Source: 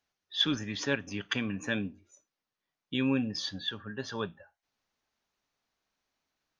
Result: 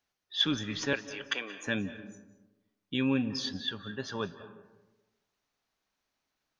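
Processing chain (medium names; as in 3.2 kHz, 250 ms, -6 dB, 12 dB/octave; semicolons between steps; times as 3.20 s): 0.93–1.67 s: high-pass 390 Hz 24 dB/octave; reverberation RT60 1.1 s, pre-delay 136 ms, DRR 13 dB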